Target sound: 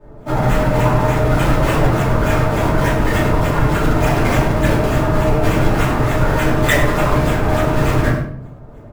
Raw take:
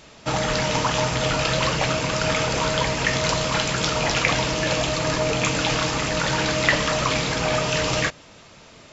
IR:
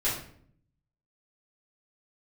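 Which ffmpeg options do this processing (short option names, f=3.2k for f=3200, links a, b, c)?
-filter_complex "[0:a]lowshelf=f=140:g=5,asplit=2[a][b];[b]alimiter=limit=-17.5dB:level=0:latency=1,volume=-2dB[c];[a][c]amix=inputs=2:normalize=0,adynamicsmooth=sensitivity=2.5:basefreq=910,acrossover=split=160|1600[d][e][f];[f]acrusher=samples=41:mix=1:aa=0.000001:lfo=1:lforange=65.6:lforate=3.4[g];[d][e][g]amix=inputs=3:normalize=0,asplit=2[h][i];[i]adelay=99.13,volume=-11dB,highshelf=f=4k:g=-2.23[j];[h][j]amix=inputs=2:normalize=0[k];[1:a]atrim=start_sample=2205[l];[k][l]afir=irnorm=-1:irlink=0,volume=-5.5dB"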